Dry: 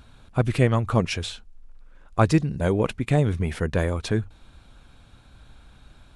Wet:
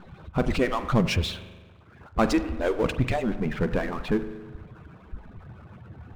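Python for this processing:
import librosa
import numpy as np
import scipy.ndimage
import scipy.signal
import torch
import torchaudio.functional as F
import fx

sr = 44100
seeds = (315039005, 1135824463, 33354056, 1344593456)

y = fx.hpss_only(x, sr, part='percussive')
y = fx.rev_spring(y, sr, rt60_s=1.0, pass_ms=(40,), chirp_ms=60, drr_db=14.5)
y = fx.env_lowpass(y, sr, base_hz=2100.0, full_db=-20.0)
y = fx.lowpass(y, sr, hz=fx.steps((0.0, 6800.0), (3.24, 2200.0)), slope=12)
y = fx.power_curve(y, sr, exponent=0.7)
y = fx.low_shelf(y, sr, hz=130.0, db=10.5)
y = y * 10.0 ** (-5.0 / 20.0)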